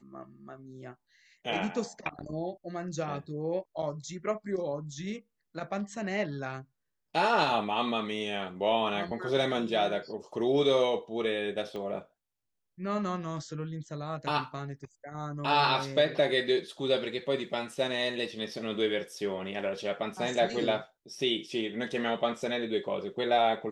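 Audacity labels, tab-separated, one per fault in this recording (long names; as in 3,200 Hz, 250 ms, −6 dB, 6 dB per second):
11.760000	11.760000	click −27 dBFS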